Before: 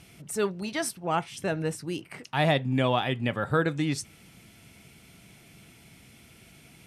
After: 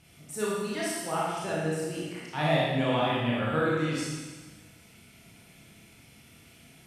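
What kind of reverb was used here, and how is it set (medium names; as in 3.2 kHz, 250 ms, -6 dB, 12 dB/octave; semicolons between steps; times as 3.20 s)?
Schroeder reverb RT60 1.4 s, combs from 26 ms, DRR -6.5 dB; trim -8 dB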